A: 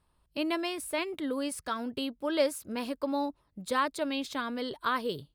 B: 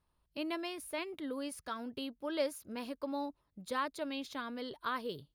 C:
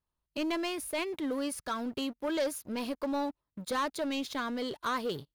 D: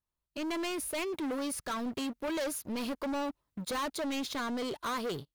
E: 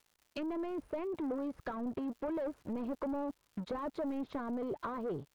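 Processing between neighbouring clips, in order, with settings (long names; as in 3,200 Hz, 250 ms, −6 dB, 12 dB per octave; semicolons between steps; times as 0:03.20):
notch filter 8,000 Hz, Q 5.3; level −7 dB
leveller curve on the samples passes 3; level −3.5 dB
automatic gain control gain up to 10 dB; soft clipping −26.5 dBFS, distortion −10 dB; level −5 dB
treble cut that deepens with the level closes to 820 Hz, closed at −33.5 dBFS; surface crackle 210 per second −54 dBFS; harmonic and percussive parts rebalanced harmonic −3 dB; level +1 dB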